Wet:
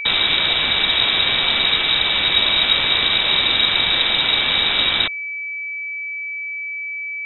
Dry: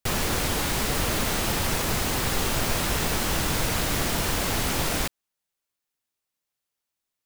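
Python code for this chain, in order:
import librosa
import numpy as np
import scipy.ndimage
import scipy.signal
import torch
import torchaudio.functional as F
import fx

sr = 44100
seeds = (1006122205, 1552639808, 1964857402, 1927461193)

y = x + 10.0 ** (-32.0 / 20.0) * np.sin(2.0 * np.pi * 1500.0 * np.arange(len(x)) / sr)
y = fx.freq_invert(y, sr, carrier_hz=3800)
y = F.gain(torch.from_numpy(y), 7.5).numpy()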